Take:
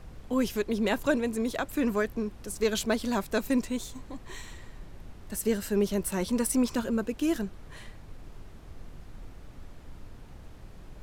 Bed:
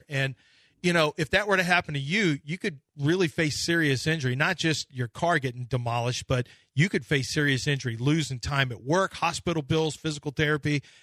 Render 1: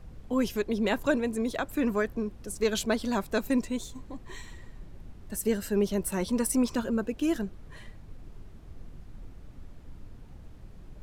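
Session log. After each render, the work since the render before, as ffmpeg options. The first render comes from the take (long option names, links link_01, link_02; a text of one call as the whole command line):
ffmpeg -i in.wav -af "afftdn=noise_reduction=6:noise_floor=-48" out.wav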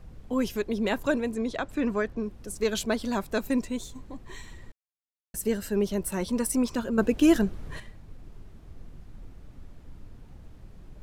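ffmpeg -i in.wav -filter_complex "[0:a]asettb=1/sr,asplit=3[link_01][link_02][link_03];[link_01]atrim=end=1.344[link_04];[link_02]atrim=start=1.34:end=2.23,asetpts=PTS-STARTPTS,afade=type=in:duration=0.004:curve=qsin,afade=type=out:start_time=0.886:duration=0.004:curve=qsin,lowpass=6600[link_05];[link_03]atrim=start=2.226[link_06];[link_04][link_05]acrossfade=duration=0.004:curve1=hsin:curve2=qsin[link_07];[link_07][link_06]acrossfade=duration=0.004:curve1=qsin:curve2=hsin,asplit=5[link_08][link_09][link_10][link_11][link_12];[link_08]atrim=end=4.72,asetpts=PTS-STARTPTS,afade=type=out:start_time=4.716:duration=0.004:curve=hsin[link_13];[link_09]atrim=start=4.72:end=5.34,asetpts=PTS-STARTPTS,volume=0[link_14];[link_10]atrim=start=5.34:end=6.982,asetpts=PTS-STARTPTS,afade=type=in:duration=0.004:curve=hsin[link_15];[link_11]atrim=start=6.978:end=7.802,asetpts=PTS-STARTPTS,volume=8dB[link_16];[link_12]atrim=start=7.798[link_17];[link_13][link_14][link_15]concat=n=3:v=0:a=1[link_18];[link_18][link_16]acrossfade=duration=0.004:curve1=hsin:curve2=hsin[link_19];[link_19][link_17]acrossfade=duration=0.004:curve1=hsin:curve2=hsin" out.wav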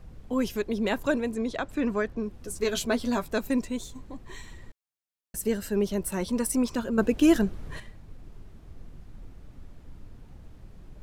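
ffmpeg -i in.wav -filter_complex "[0:a]asettb=1/sr,asplit=3[link_01][link_02][link_03];[link_01]atrim=end=2.324[link_04];[link_02]atrim=start=2.32:end=3.29,asetpts=PTS-STARTPTS,afade=type=in:duration=0.004:curve=qsin,afade=type=out:start_time=0.966:duration=0.004:curve=qsin,asplit=2[link_05][link_06];[link_06]adelay=12,volume=-6dB[link_07];[link_05][link_07]amix=inputs=2:normalize=0,atrim=end_sample=42777[link_08];[link_03]atrim=start=3.286[link_09];[link_04][link_08]acrossfade=duration=0.004:curve1=hsin:curve2=qsin[link_10];[link_10][link_09]acrossfade=duration=0.004:curve1=qsin:curve2=hsin" out.wav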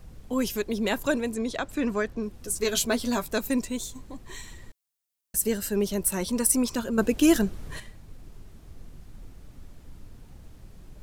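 ffmpeg -i in.wav -af "highshelf=frequency=4500:gain=10.5" out.wav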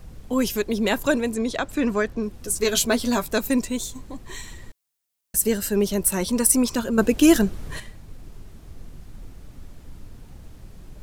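ffmpeg -i in.wav -af "volume=4.5dB" out.wav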